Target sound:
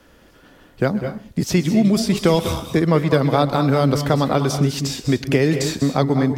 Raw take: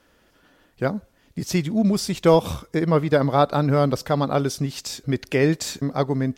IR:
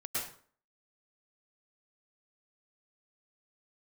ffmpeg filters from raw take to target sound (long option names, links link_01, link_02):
-filter_complex "[0:a]lowshelf=frequency=390:gain=5,acrossover=split=200|1600|3900[link_01][link_02][link_03][link_04];[link_01]acompressor=threshold=-31dB:ratio=4[link_05];[link_02]acompressor=threshold=-23dB:ratio=4[link_06];[link_03]acompressor=threshold=-36dB:ratio=4[link_07];[link_04]acompressor=threshold=-35dB:ratio=4[link_08];[link_05][link_06][link_07][link_08]amix=inputs=4:normalize=0,asplit=2[link_09][link_10];[1:a]atrim=start_sample=2205,asetrate=70560,aresample=44100,adelay=128[link_11];[link_10][link_11]afir=irnorm=-1:irlink=0,volume=-7dB[link_12];[link_09][link_12]amix=inputs=2:normalize=0,volume=6.5dB"